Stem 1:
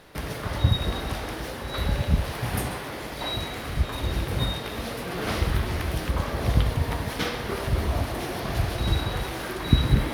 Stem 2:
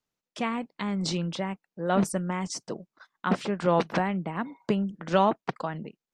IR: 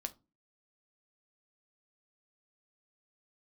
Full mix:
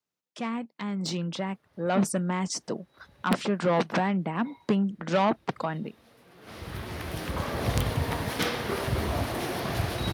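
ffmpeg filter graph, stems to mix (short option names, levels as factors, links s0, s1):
-filter_complex "[0:a]asoftclip=type=hard:threshold=0.178,adelay=1200,volume=0.501,afade=t=in:st=5.14:d=0.44:silence=0.446684,afade=t=in:st=6.42:d=0.34:silence=0.316228[s0];[1:a]asoftclip=type=tanh:threshold=0.1,adynamicequalizer=threshold=0.00398:dfrequency=230:dqfactor=6.7:tfrequency=230:tqfactor=6.7:attack=5:release=100:ratio=0.375:range=2:mode=boostabove:tftype=bell,volume=0.708,asplit=2[s1][s2];[s2]apad=whole_len=499726[s3];[s0][s3]sidechaincompress=threshold=0.00355:ratio=8:attack=22:release=1400[s4];[s4][s1]amix=inputs=2:normalize=0,highpass=94,dynaudnorm=f=320:g=9:m=2,aeval=exprs='(mod(4.73*val(0)+1,2)-1)/4.73':c=same"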